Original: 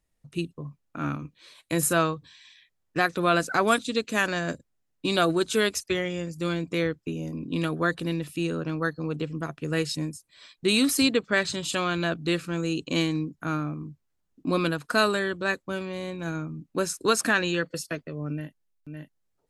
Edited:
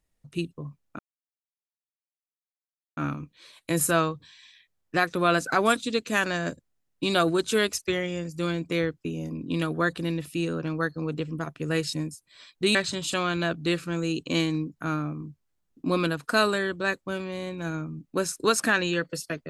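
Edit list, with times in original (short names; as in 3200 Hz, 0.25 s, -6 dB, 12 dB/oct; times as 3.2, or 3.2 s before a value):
0.99 insert silence 1.98 s
10.77–11.36 cut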